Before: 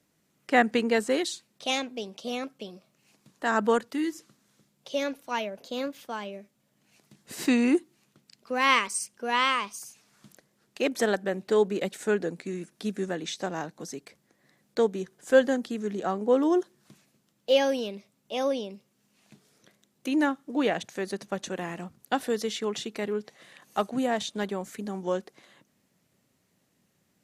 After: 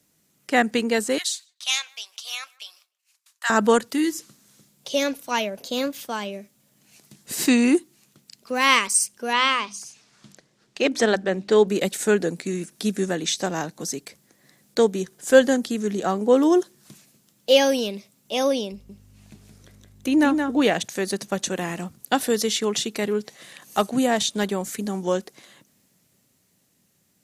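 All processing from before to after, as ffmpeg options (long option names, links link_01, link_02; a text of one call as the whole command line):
ffmpeg -i in.wav -filter_complex "[0:a]asettb=1/sr,asplit=3[link_01][link_02][link_03];[link_01]atrim=end=1.184[link_04];[link_02]atrim=start=1.18:end=3.5,asetpts=PTS-STARTPTS,afade=type=in:duration=0.004:curve=qsin,afade=type=out:start_time=2.316:duration=0.004:curve=qsin,agate=range=-33dB:threshold=-56dB:ratio=3:release=100:detection=peak,highpass=frequency=1100:width=0.5412,highpass=frequency=1100:width=1.3066,asplit=2[link_05][link_06];[link_06]adelay=151,lowpass=frequency=1800:poles=1,volume=-23.5dB,asplit=2[link_07][link_08];[link_08]adelay=151,lowpass=frequency=1800:poles=1,volume=0.2[link_09];[link_05][link_07][link_09]amix=inputs=3:normalize=0,atrim=end_sample=102312[link_10];[link_03]atrim=start=3.496[link_11];[link_04][link_10]acrossfade=duration=0.004:curve1=hsin:curve2=qsin[link_12];[link_12][link_11]acrossfade=duration=0.004:curve1=qsin:curve2=hsin,asettb=1/sr,asplit=3[link_13][link_14][link_15];[link_13]atrim=end=9.334[link_16];[link_14]atrim=start=9.33:end=11.68,asetpts=PTS-STARTPTS,afade=type=in:duration=0.004:curve=qsin,afade=type=out:start_time=2.346:duration=0.004:curve=qsin,lowpass=5400,bandreject=frequency=50:width_type=h:width=6,bandreject=frequency=100:width_type=h:width=6,bandreject=frequency=150:width_type=h:width=6,bandreject=frequency=200:width_type=h:width=6,bandreject=frequency=250:width_type=h:width=6,bandreject=frequency=300:width_type=h:width=6[link_17];[link_15]atrim=start=11.676[link_18];[link_16][link_17]acrossfade=duration=0.004:curve1=hsin:curve2=qsin[link_19];[link_19][link_18]acrossfade=duration=0.004:curve1=qsin:curve2=hsin,asettb=1/sr,asplit=3[link_20][link_21][link_22];[link_20]atrim=end=18.724[link_23];[link_21]atrim=start=18.72:end=20.62,asetpts=PTS-STARTPTS,afade=type=in:duration=0.004:curve=qsin,afade=type=out:start_time=1.896:duration=0.004:curve=qsin,highshelf=frequency=2500:gain=-7,aeval=exprs='val(0)+0.00141*(sin(2*PI*50*n/s)+sin(2*PI*2*50*n/s)/2+sin(2*PI*3*50*n/s)/3+sin(2*PI*4*50*n/s)/4+sin(2*PI*5*50*n/s)/5)':channel_layout=same,aecho=1:1:171:0.531,atrim=end_sample=83790[link_24];[link_22]atrim=start=20.616[link_25];[link_23][link_24]acrossfade=duration=0.004:curve1=hsin:curve2=qsin[link_26];[link_26][link_25]acrossfade=duration=0.004:curve1=qsin:curve2=hsin,highshelf=frequency=3900:gain=11.5,dynaudnorm=framelen=110:gausssize=31:maxgain=4.5dB,lowshelf=frequency=320:gain=4" out.wav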